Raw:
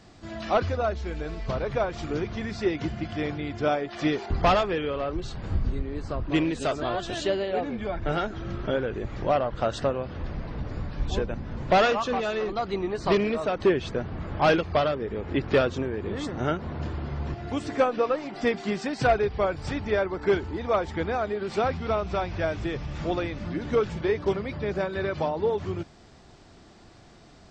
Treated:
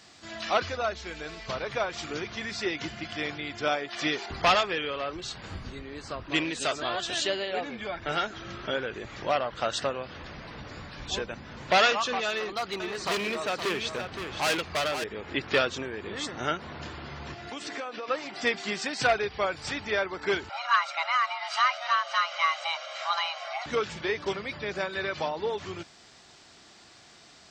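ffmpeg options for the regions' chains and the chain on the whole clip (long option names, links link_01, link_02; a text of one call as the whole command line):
ffmpeg -i in.wav -filter_complex "[0:a]asettb=1/sr,asplit=3[link_01][link_02][link_03];[link_01]atrim=end=12.284[link_04];[link_02]atrim=start=12.28:end=15.04,asetpts=PTS-STARTPTS,afade=type=in:duration=0.004:curve=qsin,afade=type=out:start_time=2.756:duration=0.004:curve=qsin,asoftclip=type=hard:threshold=-23dB,aecho=1:1:518:0.422,atrim=end_sample=121716[link_05];[link_03]atrim=start=15.036[link_06];[link_04][link_05]acrossfade=duration=0.004:curve1=hsin:curve2=qsin[link_07];[link_07][link_06]acrossfade=duration=0.004:curve1=qsin:curve2=hsin,asettb=1/sr,asplit=3[link_08][link_09][link_10];[link_08]atrim=end=17.504[link_11];[link_09]atrim=start=17.5:end=18.08,asetpts=PTS-STARTPTS,afade=type=in:duration=0.004:curve=qsin,afade=type=out:start_time=0.576:duration=0.004:curve=qsin,highpass=190,lowpass=7100,acompressor=threshold=-29dB:ratio=8:attack=3.2:release=140:knee=1:detection=peak[link_12];[link_10]atrim=start=18.076[link_13];[link_11][link_12]acrossfade=duration=0.004:curve1=hsin:curve2=qsin[link_14];[link_14][link_13]acrossfade=duration=0.004:curve1=qsin:curve2=hsin,asettb=1/sr,asplit=3[link_15][link_16][link_17];[link_15]atrim=end=20.494[link_18];[link_16]atrim=start=20.49:end=23.66,asetpts=PTS-STARTPTS,afade=type=in:duration=0.004:curve=qsin,afade=type=out:start_time=3.166:duration=0.004:curve=qsin,acrossover=split=160 6500:gain=0.141 1 0.2[link_19][link_20][link_21];[link_19][link_20][link_21]amix=inputs=3:normalize=0,aecho=1:1:1.2:0.56,atrim=end_sample=139797,afreqshift=490[link_22];[link_17]atrim=start=23.656[link_23];[link_18][link_22]acrossfade=duration=0.004:curve1=hsin:curve2=qsin[link_24];[link_24][link_23]acrossfade=duration=0.004:curve1=qsin:curve2=hsin,highpass=frequency=130:poles=1,tiltshelf=frequency=1100:gain=-7.5" out.wav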